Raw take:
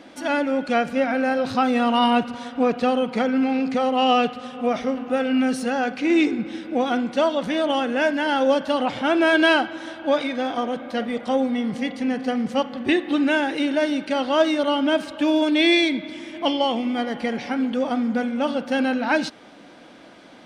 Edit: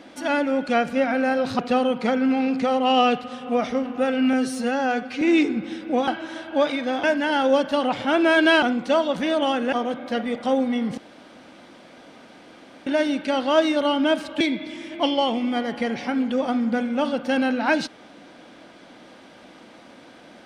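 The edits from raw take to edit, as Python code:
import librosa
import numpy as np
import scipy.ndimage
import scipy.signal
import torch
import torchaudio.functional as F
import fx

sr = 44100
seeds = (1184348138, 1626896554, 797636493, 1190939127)

y = fx.edit(x, sr, fx.cut(start_s=1.59, length_s=1.12),
    fx.stretch_span(start_s=5.45, length_s=0.59, factor=1.5),
    fx.swap(start_s=6.9, length_s=1.1, other_s=9.59, other_length_s=0.96),
    fx.room_tone_fill(start_s=11.8, length_s=1.89),
    fx.cut(start_s=15.23, length_s=0.6), tone=tone)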